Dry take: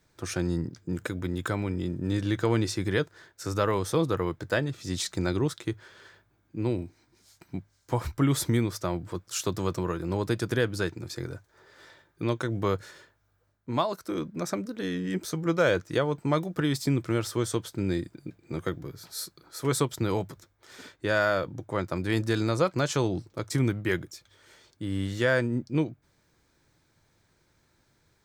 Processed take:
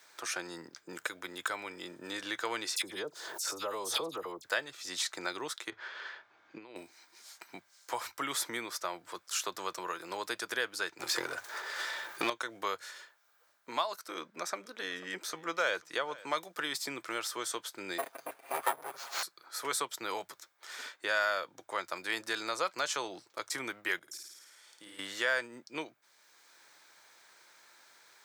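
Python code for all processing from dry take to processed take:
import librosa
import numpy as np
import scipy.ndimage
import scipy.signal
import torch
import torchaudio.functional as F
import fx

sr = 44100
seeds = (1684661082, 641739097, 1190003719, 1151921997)

y = fx.chain(x, sr, fx.peak_eq(hz=1800.0, db=-15.0, octaves=1.7),
    fx.dispersion(late='lows', ms=63.0, hz=2000.0),
    fx.pre_swell(db_per_s=44.0), at=(2.76, 4.45))
y = fx.chain(y, sr, fx.over_compress(threshold_db=-34.0, ratio=-0.5),
    fx.air_absorb(metres=190.0), at=(5.7, 6.76))
y = fx.chain(y, sr, fx.transient(attack_db=12, sustain_db=8),
    fx.power_curve(exponent=0.7), at=(10.99, 12.3))
y = fx.chain(y, sr, fx.high_shelf(hz=6400.0, db=-5.5),
    fx.echo_single(ms=493, db=-23.0), at=(14.05, 16.27))
y = fx.chain(y, sr, fx.lower_of_two(delay_ms=7.4),
    fx.peak_eq(hz=820.0, db=14.5, octaves=2.7),
    fx.resample_bad(factor=4, down='none', up='hold'), at=(17.98, 19.23))
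y = fx.chain(y, sr, fx.peak_eq(hz=10000.0, db=8.0, octaves=0.63),
    fx.level_steps(step_db=23),
    fx.room_flutter(wall_m=9.2, rt60_s=0.98), at=(23.99, 24.99))
y = scipy.signal.sosfilt(scipy.signal.butter(2, 860.0, 'highpass', fs=sr, output='sos'), y)
y = fx.band_squash(y, sr, depth_pct=40)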